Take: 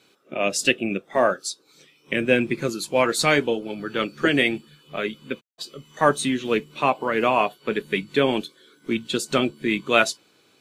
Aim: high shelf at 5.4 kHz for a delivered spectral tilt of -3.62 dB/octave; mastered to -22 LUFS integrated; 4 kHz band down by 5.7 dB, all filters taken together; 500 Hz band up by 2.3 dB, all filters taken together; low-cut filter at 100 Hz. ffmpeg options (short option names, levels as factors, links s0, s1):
-af "highpass=100,equalizer=f=500:t=o:g=3,equalizer=f=4000:t=o:g=-5,highshelf=f=5400:g=-7.5,volume=1.06"